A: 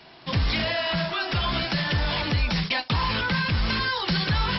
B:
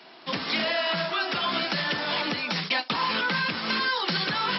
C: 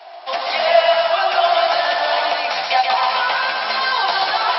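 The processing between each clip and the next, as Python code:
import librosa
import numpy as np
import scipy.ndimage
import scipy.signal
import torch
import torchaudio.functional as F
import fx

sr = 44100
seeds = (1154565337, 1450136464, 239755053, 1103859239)

y1 = scipy.signal.sosfilt(scipy.signal.butter(4, 210.0, 'highpass', fs=sr, output='sos'), x)
y1 = fx.peak_eq(y1, sr, hz=1300.0, db=3.0, octaves=0.23)
y2 = fx.highpass_res(y1, sr, hz=710.0, q=8.0)
y2 = fx.doubler(y2, sr, ms=13.0, db=-5.0)
y2 = fx.echo_feedback(y2, sr, ms=131, feedback_pct=58, wet_db=-4.0)
y2 = y2 * librosa.db_to_amplitude(2.0)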